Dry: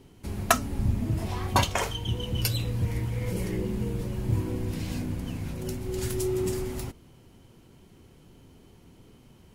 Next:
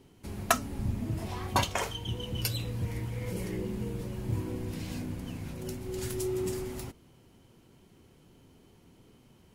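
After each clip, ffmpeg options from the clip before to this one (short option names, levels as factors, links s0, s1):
-af "lowshelf=f=83:g=-6,volume=0.668"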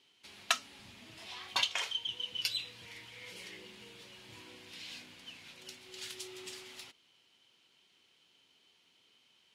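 -af "bandpass=f=3400:t=q:w=1.8:csg=0,volume=1.88"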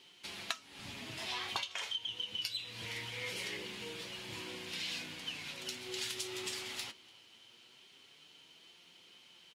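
-filter_complex "[0:a]acompressor=threshold=0.00708:ratio=20,flanger=delay=5.6:depth=3.9:regen=59:speed=0.22:shape=sinusoidal,asplit=2[s0][s1];[s1]adelay=291.5,volume=0.0708,highshelf=f=4000:g=-6.56[s2];[s0][s2]amix=inputs=2:normalize=0,volume=4.22"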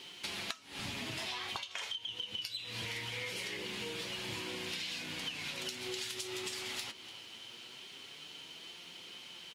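-af "acompressor=threshold=0.00447:ratio=10,volume=3.16"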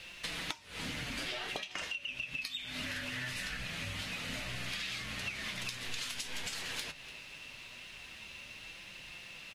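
-af "afreqshift=-370,volume=1.12"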